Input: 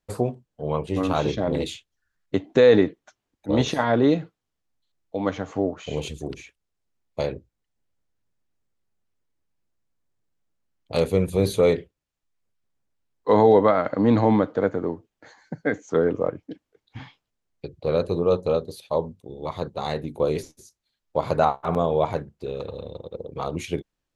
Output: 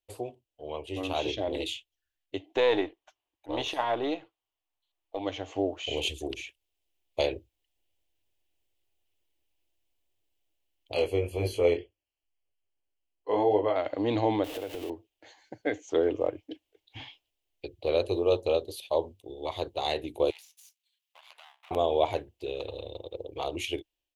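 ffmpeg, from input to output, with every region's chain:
ffmpeg -i in.wav -filter_complex "[0:a]asettb=1/sr,asplit=3[link_01][link_02][link_03];[link_01]atrim=end=2.554[link_04];[link_02]atrim=start=2.55:end=5.19,asetpts=PTS-STARTPTS,afade=type=in:duration=0.004:curve=qsin,afade=type=out:start_time=2.636:duration=0.004:curve=qsin,aeval=exprs='if(lt(val(0),0),0.708*val(0),val(0))':channel_layout=same,equalizer=frequency=1100:width=1.1:gain=13[link_05];[link_03]atrim=start=5.186[link_06];[link_04][link_05]acrossfade=duration=0.004:curve1=hsin:curve2=qsin[link_07];[link_07][link_06]acrossfade=duration=0.004:curve1=qsin:curve2=hsin,asettb=1/sr,asplit=3[link_08][link_09][link_10];[link_08]atrim=end=10.944[link_11];[link_09]atrim=start=10.94:end=13.76,asetpts=PTS-STARTPTS,afade=type=in:duration=0.004:curve=qsin,afade=type=out:start_time=2.816:duration=0.004:curve=qsin,asuperstop=centerf=3700:order=12:qfactor=5.4,aemphasis=mode=reproduction:type=cd,flanger=delay=19:depth=4.7:speed=1.9[link_12];[link_10]atrim=start=13.756[link_13];[link_11][link_12]acrossfade=duration=0.004:curve1=hsin:curve2=qsin[link_14];[link_14][link_13]acrossfade=duration=0.004:curve1=qsin:curve2=hsin,asettb=1/sr,asplit=3[link_15][link_16][link_17];[link_15]atrim=end=14.444[link_18];[link_16]atrim=start=14.44:end=14.9,asetpts=PTS-STARTPTS,afade=type=in:duration=0.004:curve=qsin,afade=type=out:start_time=0.456:duration=0.004:curve=qsin,aeval=exprs='val(0)+0.5*0.0335*sgn(val(0))':channel_layout=same,acompressor=threshold=-27dB:ratio=3:attack=3.2:release=140:knee=1:detection=peak[link_19];[link_17]atrim=start=14.896[link_20];[link_18][link_19]acrossfade=duration=0.004:curve1=hsin:curve2=qsin[link_21];[link_21][link_20]acrossfade=duration=0.004:curve1=qsin:curve2=hsin,asettb=1/sr,asplit=3[link_22][link_23][link_24];[link_22]atrim=end=20.304[link_25];[link_23]atrim=start=20.3:end=21.71,asetpts=PTS-STARTPTS,afade=type=in:duration=0.004:curve=qsin,afade=type=out:start_time=1.406:duration=0.004:curve=qsin,aeval=exprs='if(lt(val(0),0),0.251*val(0),val(0))':channel_layout=same,highpass=frequency=1100:width=0.5412,highpass=frequency=1100:width=1.3066,acompressor=threshold=-52dB:ratio=3:attack=3.2:release=140:knee=1:detection=peak[link_26];[link_24]atrim=start=21.706[link_27];[link_25][link_26]acrossfade=duration=0.004:curve1=hsin:curve2=qsin[link_28];[link_28][link_27]acrossfade=duration=0.004:curve1=qsin:curve2=hsin,bass=frequency=250:gain=-9,treble=frequency=4000:gain=-12,dynaudnorm=framelen=470:gausssize=5:maxgain=11.5dB,firequalizer=gain_entry='entry(100,0);entry(170,-21);entry(320,-2);entry(460,-8);entry(700,-4);entry(1300,-16);entry(2900,8);entry(4100,3);entry(13000,13)':delay=0.05:min_phase=1,volume=-4.5dB" out.wav

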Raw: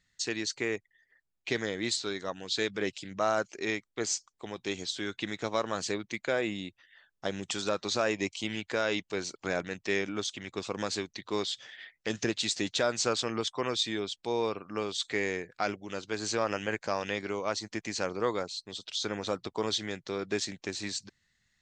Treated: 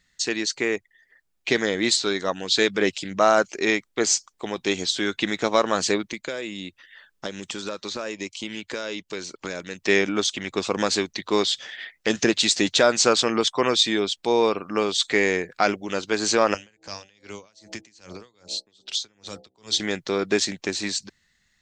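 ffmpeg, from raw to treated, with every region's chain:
ffmpeg -i in.wav -filter_complex "[0:a]asettb=1/sr,asplit=3[link_01][link_02][link_03];[link_01]atrim=end=6.084[link_04];[link_02]atrim=start=6.08:end=9.82,asetpts=PTS-STARTPTS,afade=type=in:duration=0.004:curve=qsin,afade=type=out:start_time=3.736:duration=0.004:curve=qsin,equalizer=frequency=730:width_type=o:width=0.21:gain=-9,acrossover=split=880|3000[link_05][link_06][link_07];[link_05]acompressor=threshold=-43dB:ratio=4[link_08];[link_06]acompressor=threshold=-50dB:ratio=4[link_09];[link_07]acompressor=threshold=-48dB:ratio=4[link_10];[link_08][link_09][link_10]amix=inputs=3:normalize=0[link_11];[link_03]atrim=start=9.816[link_12];[link_04][link_11]acrossfade=duration=0.004:curve1=hsin:curve2=qsin[link_13];[link_13][link_12]acrossfade=duration=0.004:curve1=qsin:curve2=hsin,asettb=1/sr,asplit=3[link_14][link_15][link_16];[link_14]atrim=end=16.544[link_17];[link_15]atrim=start=16.54:end=19.8,asetpts=PTS-STARTPTS,afade=type=in:duration=0.004:curve=qsin,afade=type=out:start_time=3.256:duration=0.004:curve=qsin,bandreject=frequency=64.52:width_type=h:width=4,bandreject=frequency=129.04:width_type=h:width=4,bandreject=frequency=193.56:width_type=h:width=4,bandreject=frequency=258.08:width_type=h:width=4,bandreject=frequency=322.6:width_type=h:width=4,bandreject=frequency=387.12:width_type=h:width=4,bandreject=frequency=451.64:width_type=h:width=4,bandreject=frequency=516.16:width_type=h:width=4,bandreject=frequency=580.68:width_type=h:width=4,bandreject=frequency=645.2:width_type=h:width=4,bandreject=frequency=709.72:width_type=h:width=4,bandreject=frequency=774.24:width_type=h:width=4,bandreject=frequency=838.76:width_type=h:width=4,acrossover=split=140|3000[link_18][link_19][link_20];[link_19]acompressor=threshold=-46dB:ratio=5:attack=3.2:release=140:knee=2.83:detection=peak[link_21];[link_18][link_21][link_20]amix=inputs=3:normalize=0,aeval=exprs='val(0)*pow(10,-29*(0.5-0.5*cos(2*PI*2.5*n/s))/20)':channel_layout=same[link_22];[link_16]atrim=start=19.796[link_23];[link_17][link_22]acrossfade=duration=0.004:curve1=hsin:curve2=qsin[link_24];[link_24][link_23]acrossfade=duration=0.004:curve1=qsin:curve2=hsin,equalizer=frequency=110:width=3.9:gain=-11,dynaudnorm=framelen=300:gausssize=9:maxgain=3dB,volume=7.5dB" out.wav

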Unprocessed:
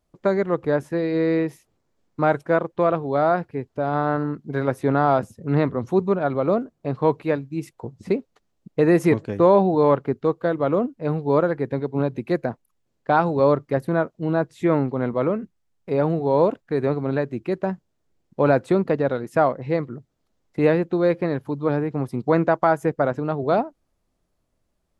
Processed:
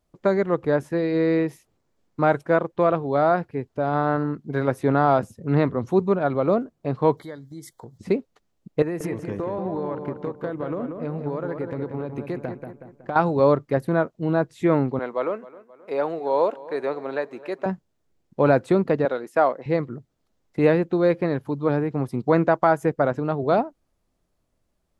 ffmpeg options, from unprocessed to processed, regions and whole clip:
ffmpeg -i in.wav -filter_complex "[0:a]asettb=1/sr,asplit=3[link_01][link_02][link_03];[link_01]atrim=end=7.174[link_04];[link_02]atrim=start=7.17:end=7.98,asetpts=PTS-STARTPTS,afade=type=in:duration=0.004:curve=qsin,afade=type=out:start_time=0.806:duration=0.004:curve=qsin,highshelf=frequency=2900:gain=12,acompressor=threshold=-40dB:ratio=2.5:attack=3.2:release=140:knee=1:detection=peak,asuperstop=centerf=2600:order=12:qfactor=3.1[link_05];[link_03]atrim=start=7.976[link_06];[link_04][link_05]acrossfade=duration=0.004:curve1=hsin:curve2=qsin[link_07];[link_07][link_06]acrossfade=duration=0.004:curve1=qsin:curve2=hsin,asettb=1/sr,asplit=3[link_08][link_09][link_10];[link_08]atrim=end=8.824[link_11];[link_09]atrim=start=8.82:end=13.16,asetpts=PTS-STARTPTS,afade=type=in:duration=0.004:curve=qsin,afade=type=out:start_time=4.336:duration=0.004:curve=qsin,equalizer=frequency=3900:width_type=o:width=0.51:gain=-4.5,acompressor=threshold=-24dB:ratio=10:attack=3.2:release=140:knee=1:detection=peak,asplit=2[link_12][link_13];[link_13]adelay=185,lowpass=frequency=2800:poles=1,volume=-6dB,asplit=2[link_14][link_15];[link_15]adelay=185,lowpass=frequency=2800:poles=1,volume=0.48,asplit=2[link_16][link_17];[link_17]adelay=185,lowpass=frequency=2800:poles=1,volume=0.48,asplit=2[link_18][link_19];[link_19]adelay=185,lowpass=frequency=2800:poles=1,volume=0.48,asplit=2[link_20][link_21];[link_21]adelay=185,lowpass=frequency=2800:poles=1,volume=0.48,asplit=2[link_22][link_23];[link_23]adelay=185,lowpass=frequency=2800:poles=1,volume=0.48[link_24];[link_12][link_14][link_16][link_18][link_20][link_22][link_24]amix=inputs=7:normalize=0,atrim=end_sample=191394[link_25];[link_10]atrim=start=13.156[link_26];[link_11][link_25]acrossfade=duration=0.004:curve1=hsin:curve2=qsin[link_27];[link_27][link_26]acrossfade=duration=0.004:curve1=qsin:curve2=hsin,asettb=1/sr,asplit=3[link_28][link_29][link_30];[link_28]atrim=end=14.994[link_31];[link_29]atrim=start=14.99:end=17.66,asetpts=PTS-STARTPTS,afade=type=in:duration=0.004:curve=qsin,afade=type=out:start_time=2.666:duration=0.004:curve=qsin,highpass=480,asplit=2[link_32][link_33];[link_33]adelay=265,lowpass=frequency=4100:poles=1,volume=-19dB,asplit=2[link_34][link_35];[link_35]adelay=265,lowpass=frequency=4100:poles=1,volume=0.53,asplit=2[link_36][link_37];[link_37]adelay=265,lowpass=frequency=4100:poles=1,volume=0.53,asplit=2[link_38][link_39];[link_39]adelay=265,lowpass=frequency=4100:poles=1,volume=0.53[link_40];[link_32][link_34][link_36][link_38][link_40]amix=inputs=5:normalize=0,atrim=end_sample=117747[link_41];[link_30]atrim=start=17.656[link_42];[link_31][link_41]acrossfade=duration=0.004:curve1=hsin:curve2=qsin[link_43];[link_43][link_42]acrossfade=duration=0.004:curve1=qsin:curve2=hsin,asettb=1/sr,asplit=3[link_44][link_45][link_46];[link_44]atrim=end=19.054[link_47];[link_45]atrim=start=19.05:end=19.66,asetpts=PTS-STARTPTS,afade=type=in:duration=0.004:curve=qsin,afade=type=out:start_time=0.606:duration=0.004:curve=qsin,agate=range=-33dB:threshold=-42dB:ratio=3:release=100:detection=peak,highpass=340[link_48];[link_46]atrim=start=19.656[link_49];[link_47][link_48]acrossfade=duration=0.004:curve1=hsin:curve2=qsin[link_50];[link_50][link_49]acrossfade=duration=0.004:curve1=qsin:curve2=hsin" out.wav

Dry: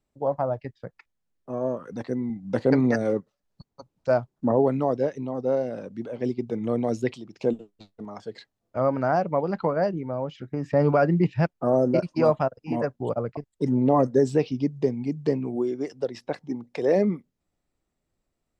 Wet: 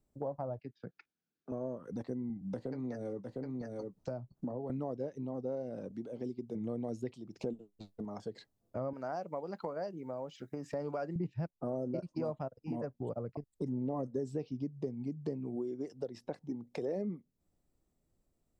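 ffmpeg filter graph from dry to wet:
ffmpeg -i in.wav -filter_complex "[0:a]asettb=1/sr,asplit=3[link_01][link_02][link_03];[link_01]atrim=end=0.594[link_04];[link_02]atrim=start=0.59:end=1.52,asetpts=PTS-STARTPTS,afade=type=in:duration=0.004:curve=qsin,afade=type=out:start_time=0.926:duration=0.004:curve=qsin,bandreject=frequency=1900:width=14,acrossover=split=430|3000[link_05][link_06][link_07];[link_06]acompressor=threshold=-49dB:ratio=3:attack=3.2:release=140:knee=2.83:detection=peak[link_08];[link_05][link_08][link_07]amix=inputs=3:normalize=0,highpass=200,equalizer=frequency=570:width_type=q:width=4:gain=-9,equalizer=frequency=1000:width_type=q:width=4:gain=-8,equalizer=frequency=1500:width_type=q:width=4:gain=9,equalizer=frequency=2500:width_type=q:width=4:gain=4,lowpass=frequency=5700:width=0.5412,lowpass=frequency=5700:width=1.3066[link_09];[link_03]atrim=start=1.516[link_10];[link_04][link_09]acrossfade=duration=0.004:curve1=hsin:curve2=qsin[link_11];[link_11][link_10]acrossfade=duration=0.004:curve1=qsin:curve2=hsin,asettb=1/sr,asplit=3[link_12][link_13][link_14];[link_12]atrim=end=2.414[link_15];[link_13]atrim=start=2.41:end=4.7,asetpts=PTS-STARTPTS,afade=type=in:duration=0.004:curve=qsin,afade=type=out:start_time=2.286:duration=0.004:curve=qsin,aecho=1:1:706:0.237,atrim=end_sample=100989,acrossover=split=300|650[link_16][link_17][link_18];[link_16]acompressor=threshold=-36dB:ratio=4[link_19];[link_17]acompressor=threshold=-35dB:ratio=4[link_20];[link_18]acompressor=threshold=-39dB:ratio=4[link_21];[link_19][link_20][link_21]amix=inputs=3:normalize=0,asplit=2[link_22][link_23];[link_23]adelay=16,volume=-11.5dB[link_24];[link_22][link_24]amix=inputs=2:normalize=0,atrim=end_sample=100989[link_25];[link_14]atrim=start=4.696[link_26];[link_15][link_25]acrossfade=duration=0.004:curve1=hsin:curve2=qsin[link_27];[link_27][link_26]acrossfade=duration=0.004:curve1=qsin:curve2=hsin,asettb=1/sr,asplit=3[link_28][link_29][link_30];[link_28]atrim=end=5.914[link_31];[link_29]atrim=start=5.91:end=6.55,asetpts=PTS-STARTPTS,afade=type=in:duration=0.004:curve=qsin,afade=type=out:start_time=0.636:duration=0.004:curve=qsin,lowshelf=frequency=190:gain=-9.5,acrossover=split=460|3000[link_32][link_33][link_34];[link_33]acompressor=threshold=-52dB:ratio=2:attack=3.2:release=140:knee=2.83:detection=peak[link_35];[link_32][link_35][link_34]amix=inputs=3:normalize=0[link_36];[link_30]atrim=start=6.546[link_37];[link_31][link_36]acrossfade=duration=0.004:curve1=hsin:curve2=qsin[link_38];[link_38][link_37]acrossfade=duration=0.004:curve1=qsin:curve2=hsin,asettb=1/sr,asplit=3[link_39][link_40][link_41];[link_39]atrim=end=8.934[link_42];[link_40]atrim=start=8.93:end=11.16,asetpts=PTS-STARTPTS,afade=type=in:duration=0.004:curve=qsin,afade=type=out:start_time=2.226:duration=0.004:curve=qsin,highpass=frequency=560:poles=1,highshelf=frequency=5200:gain=10[link_43];[link_41]atrim=start=11.156[link_44];[link_42][link_43]acrossfade=duration=0.004:curve1=hsin:curve2=qsin[link_45];[link_45][link_44]acrossfade=duration=0.004:curve1=qsin:curve2=hsin,equalizer=frequency=2200:width_type=o:width=2.9:gain=-10,acompressor=threshold=-41dB:ratio=3,volume=2dB" out.wav

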